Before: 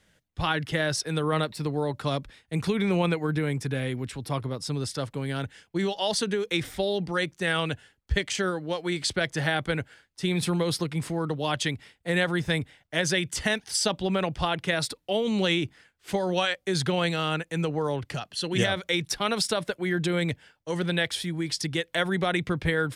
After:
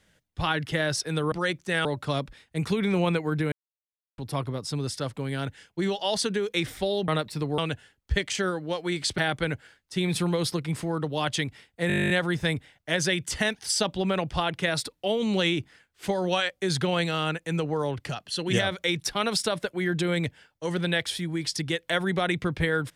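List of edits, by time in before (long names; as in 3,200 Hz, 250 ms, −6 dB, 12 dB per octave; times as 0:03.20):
0:01.32–0:01.82: swap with 0:07.05–0:07.58
0:03.49–0:04.15: silence
0:09.18–0:09.45: remove
0:12.15: stutter 0.02 s, 12 plays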